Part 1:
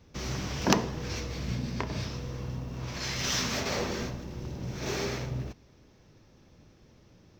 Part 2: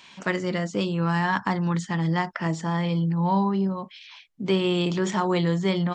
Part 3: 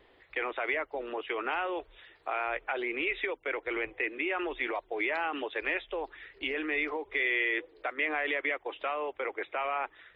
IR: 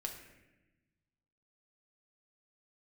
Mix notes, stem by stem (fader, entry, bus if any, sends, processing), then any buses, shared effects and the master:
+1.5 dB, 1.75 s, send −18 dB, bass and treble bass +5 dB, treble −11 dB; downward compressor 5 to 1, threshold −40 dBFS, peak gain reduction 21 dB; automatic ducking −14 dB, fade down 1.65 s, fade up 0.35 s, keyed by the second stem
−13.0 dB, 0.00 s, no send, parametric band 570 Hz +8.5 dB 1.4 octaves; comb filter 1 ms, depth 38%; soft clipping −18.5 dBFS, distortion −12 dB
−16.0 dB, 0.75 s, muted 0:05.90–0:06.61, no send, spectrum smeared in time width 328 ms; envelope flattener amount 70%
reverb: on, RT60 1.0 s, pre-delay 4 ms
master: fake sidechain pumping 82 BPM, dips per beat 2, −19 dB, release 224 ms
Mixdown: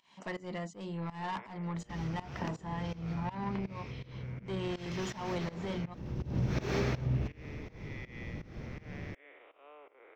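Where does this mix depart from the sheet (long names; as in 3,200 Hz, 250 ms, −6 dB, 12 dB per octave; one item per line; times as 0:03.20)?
stem 1 +1.5 dB → +11.0 dB
stem 3: missing envelope flattener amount 70%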